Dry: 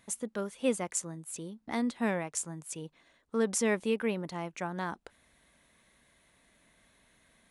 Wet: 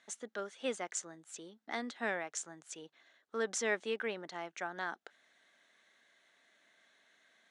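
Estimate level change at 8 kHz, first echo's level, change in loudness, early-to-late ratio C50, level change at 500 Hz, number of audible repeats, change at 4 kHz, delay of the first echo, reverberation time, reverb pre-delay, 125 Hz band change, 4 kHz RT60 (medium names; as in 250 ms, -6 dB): -6.0 dB, no echo, -6.0 dB, no reverb, -6.0 dB, no echo, -1.0 dB, no echo, no reverb, no reverb, -17.0 dB, no reverb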